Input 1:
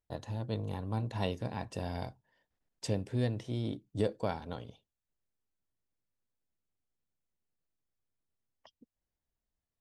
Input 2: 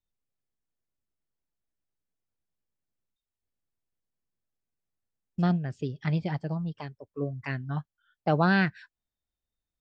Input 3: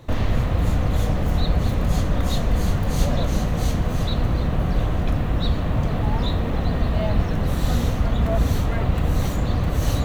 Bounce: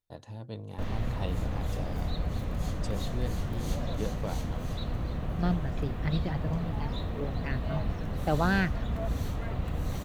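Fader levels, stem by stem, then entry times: -4.5 dB, -3.5 dB, -11.5 dB; 0.00 s, 0.00 s, 0.70 s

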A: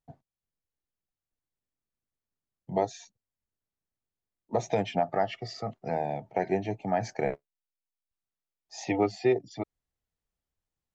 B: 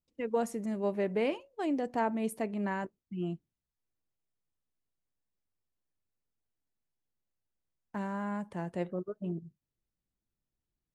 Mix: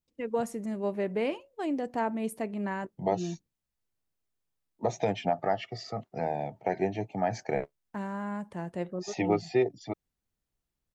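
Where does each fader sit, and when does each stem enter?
-1.0 dB, +0.5 dB; 0.30 s, 0.00 s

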